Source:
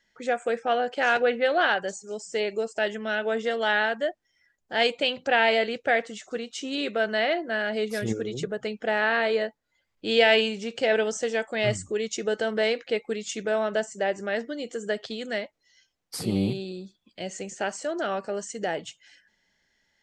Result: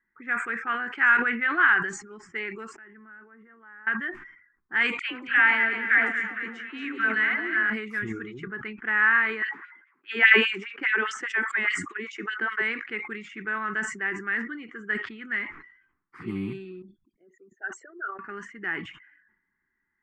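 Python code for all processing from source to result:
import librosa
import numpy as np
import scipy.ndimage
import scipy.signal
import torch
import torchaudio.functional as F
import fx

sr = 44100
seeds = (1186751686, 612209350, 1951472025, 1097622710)

y = fx.chain(x, sr, fx.level_steps(step_db=21),
    fx.spacing_loss(db_at_10k=25), at=(2.76, 3.87))
y = fx.chain(y, sr, fx.dispersion(late='lows', ms=110.0, hz=950.0),
    fx.echo_alternate(ms=114, hz=1200.0, feedback_pct=72, wet_db=-6.0), at=(4.99, 7.7))
y = fx.chain(y, sr, fx.high_shelf(hz=9400.0, db=-9.5),
    fx.filter_lfo_highpass(shape='sine', hz=4.9, low_hz=240.0, high_hz=3400.0, q=2.2), at=(9.42, 12.62))
y = fx.chain(y, sr, fx.envelope_sharpen(power=3.0),
    fx.upward_expand(threshold_db=-41.0, expansion=2.5), at=(16.82, 18.19))
y = fx.env_lowpass(y, sr, base_hz=930.0, full_db=-22.5)
y = fx.curve_eq(y, sr, hz=(140.0, 370.0, 570.0, 1100.0, 2000.0, 4100.0, 11000.0), db=(0, 5, -23, 14, 15, -14, -4))
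y = fx.sustainer(y, sr, db_per_s=84.0)
y = y * librosa.db_to_amplitude(-8.5)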